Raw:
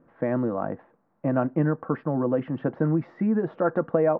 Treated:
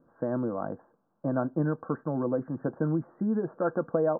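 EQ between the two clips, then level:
Chebyshev low-pass filter 1,600 Hz, order 6
−4.0 dB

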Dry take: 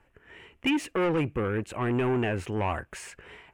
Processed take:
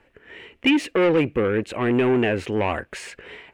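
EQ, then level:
graphic EQ with 10 bands 250 Hz +6 dB, 500 Hz +8 dB, 2,000 Hz +6 dB, 4,000 Hz +9 dB
0.0 dB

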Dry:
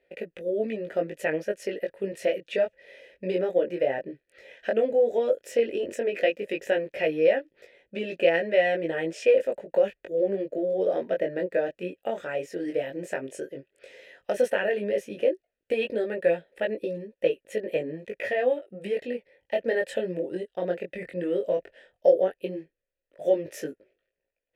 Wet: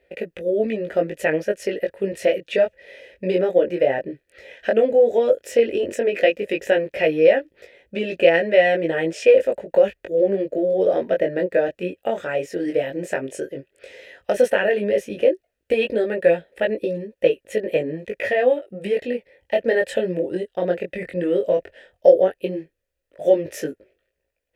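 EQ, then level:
parametric band 67 Hz +13.5 dB 0.77 octaves
+6.5 dB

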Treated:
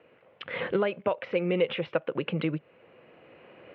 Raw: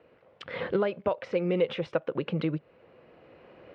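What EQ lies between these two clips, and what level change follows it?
high-pass filter 96 Hz
low-pass with resonance 2,800 Hz, resonance Q 1.8
0.0 dB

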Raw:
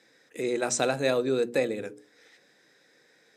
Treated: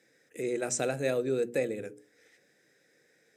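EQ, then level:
octave-band graphic EQ 250/1,000/4,000 Hz −4/−12/−10 dB
0.0 dB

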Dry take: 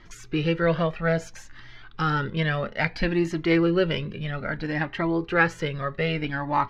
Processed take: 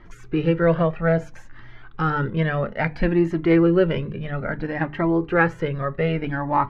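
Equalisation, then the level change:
high-shelf EQ 2,500 Hz −12 dB
parametric band 4,900 Hz −6.5 dB 1.5 octaves
mains-hum notches 50/100/150/200/250/300 Hz
+5.0 dB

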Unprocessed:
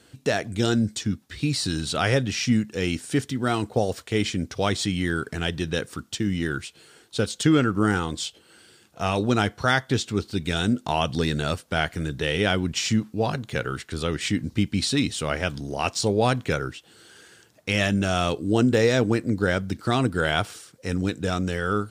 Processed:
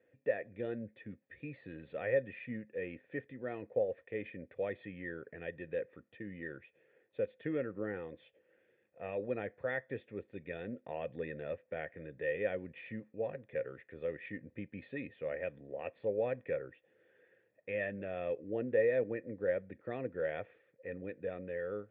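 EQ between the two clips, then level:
formant resonators in series e
high-pass filter 88 Hz
−2.5 dB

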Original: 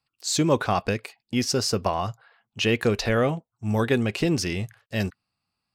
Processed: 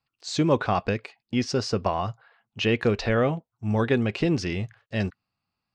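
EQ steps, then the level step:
high-frequency loss of the air 130 metres
0.0 dB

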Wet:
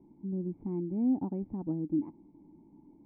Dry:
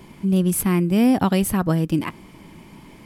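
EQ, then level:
formant resonators in series u
−5.5 dB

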